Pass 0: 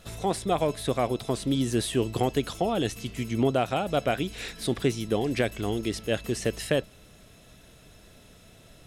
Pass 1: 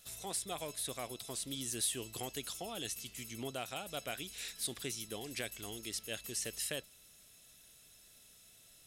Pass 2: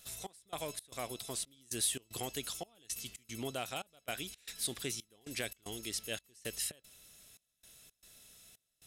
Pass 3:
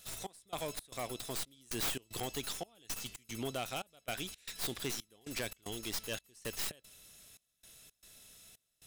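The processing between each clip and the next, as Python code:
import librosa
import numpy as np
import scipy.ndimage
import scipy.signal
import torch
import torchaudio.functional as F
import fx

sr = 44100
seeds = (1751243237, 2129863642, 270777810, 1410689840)

y1 = scipy.signal.lfilter([1.0, -0.9], [1.0], x)
y2 = fx.step_gate(y1, sr, bpm=114, pattern='xx..xx.xx', floor_db=-24.0, edge_ms=4.5)
y2 = F.gain(torch.from_numpy(y2), 2.0).numpy()
y3 = fx.tracing_dist(y2, sr, depth_ms=0.17)
y3 = np.clip(y3, -10.0 ** (-31.5 / 20.0), 10.0 ** (-31.5 / 20.0))
y3 = F.gain(torch.from_numpy(y3), 1.5).numpy()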